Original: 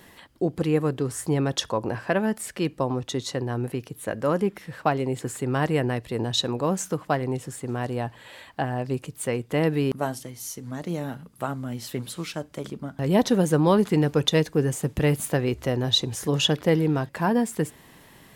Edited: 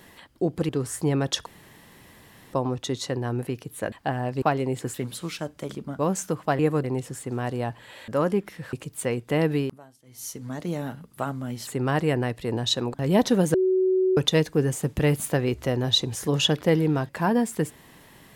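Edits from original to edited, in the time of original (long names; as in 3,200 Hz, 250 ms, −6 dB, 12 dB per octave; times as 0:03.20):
0:00.69–0:00.94: move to 0:07.21
0:01.71–0:02.78: fill with room tone
0:04.17–0:04.82: swap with 0:08.45–0:08.95
0:05.34–0:06.61: swap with 0:11.89–0:12.94
0:09.78–0:10.50: duck −22 dB, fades 0.24 s
0:13.54–0:14.17: beep over 374 Hz −18 dBFS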